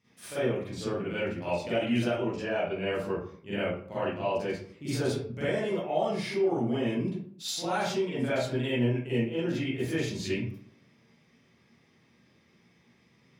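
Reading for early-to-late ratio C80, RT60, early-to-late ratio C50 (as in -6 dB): 3.5 dB, 0.55 s, -4.0 dB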